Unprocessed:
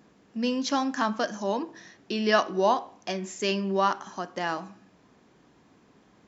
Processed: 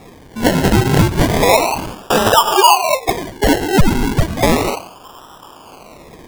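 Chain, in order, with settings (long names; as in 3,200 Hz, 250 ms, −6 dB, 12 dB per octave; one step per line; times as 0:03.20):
0:02.32–0:04.43: three sine waves on the formant tracks
high-pass filter 810 Hz 12 dB per octave
parametric band 2,900 Hz −6.5 dB 0.56 octaves
phaser with its sweep stopped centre 2,800 Hz, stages 8
reverb whose tail is shaped and stops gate 220 ms flat, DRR 8 dB
sample-and-hold swept by an LFO 29×, swing 60% 0.33 Hz
downward compressor 16 to 1, threshold −37 dBFS, peak gain reduction 14.5 dB
boost into a limiter +31.5 dB
level −1 dB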